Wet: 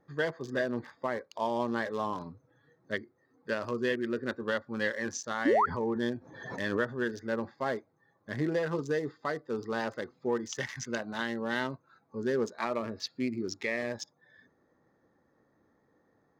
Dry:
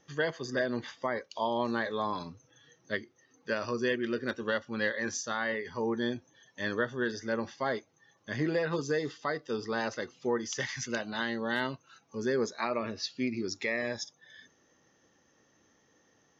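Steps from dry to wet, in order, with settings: Wiener smoothing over 15 samples; 5.45–5.66 painted sound rise 240–1500 Hz -24 dBFS; 5.54–6.97 backwards sustainer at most 58 dB/s

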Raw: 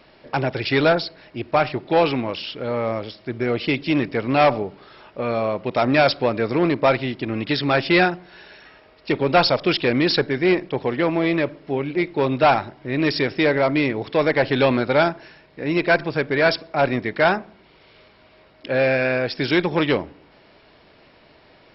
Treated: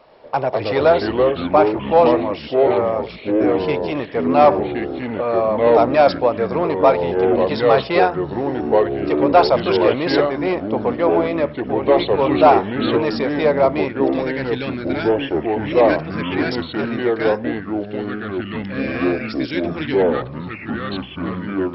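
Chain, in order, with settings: band shelf 740 Hz +10.5 dB, from 13.87 s -8 dB; echoes that change speed 0.111 s, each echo -4 st, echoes 3; gain -5.5 dB

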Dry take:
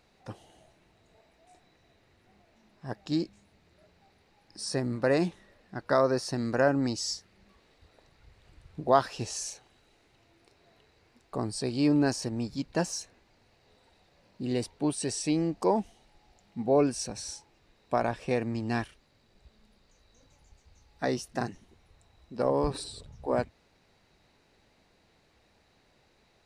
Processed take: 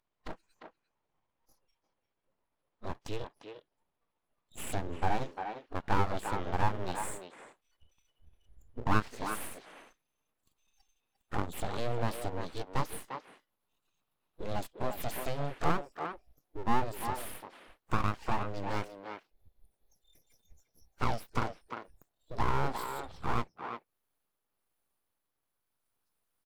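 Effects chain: gliding pitch shift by -6.5 st ending unshifted; spectral noise reduction 30 dB; compressor 2:1, threshold -51 dBFS, peak gain reduction 18 dB; band shelf 550 Hz +8 dB; full-wave rectifier; speakerphone echo 0.35 s, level -6 dB; gain +8.5 dB

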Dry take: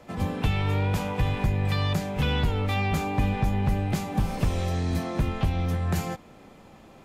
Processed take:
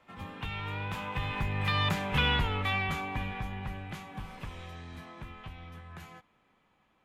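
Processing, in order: Doppler pass-by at 2.09, 9 m/s, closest 4.7 m; band shelf 1800 Hz +9.5 dB 2.3 oct; gain -4.5 dB

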